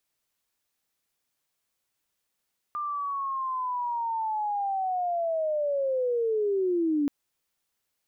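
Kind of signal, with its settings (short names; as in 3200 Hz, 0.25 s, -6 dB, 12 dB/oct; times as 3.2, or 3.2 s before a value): chirp linear 1200 Hz -> 280 Hz -28.5 dBFS -> -22 dBFS 4.33 s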